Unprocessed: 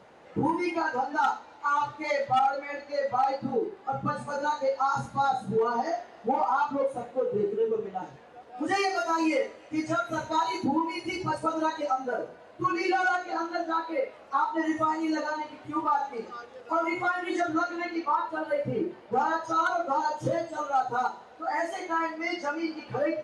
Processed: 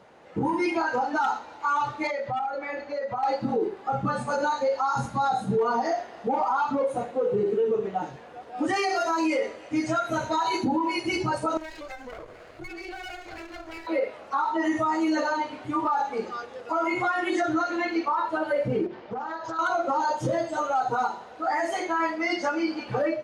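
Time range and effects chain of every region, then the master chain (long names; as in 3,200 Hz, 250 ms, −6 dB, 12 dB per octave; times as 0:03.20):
0:02.07–0:03.23: high-shelf EQ 3,600 Hz −9.5 dB + downward compressor 4 to 1, threshold −34 dBFS
0:11.57–0:13.87: lower of the sound and its delayed copy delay 0.42 ms + parametric band 190 Hz −8 dB + downward compressor 3 to 1, threshold −47 dBFS
0:18.86–0:19.59: low-pass filter 5,700 Hz 24 dB per octave + downward compressor 5 to 1, threshold −37 dBFS + highs frequency-modulated by the lows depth 0.37 ms
whole clip: automatic gain control gain up to 6 dB; brickwall limiter −17.5 dBFS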